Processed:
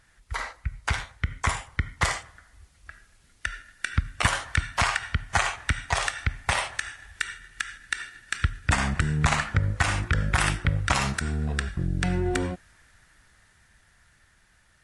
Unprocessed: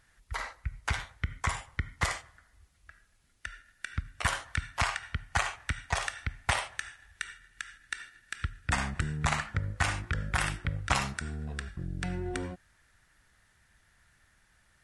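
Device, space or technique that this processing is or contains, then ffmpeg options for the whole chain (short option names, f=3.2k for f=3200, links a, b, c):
low-bitrate web radio: -af "dynaudnorm=f=380:g=13:m=6dB,alimiter=limit=-14dB:level=0:latency=1:release=189,volume=4.5dB" -ar 24000 -c:a aac -b:a 48k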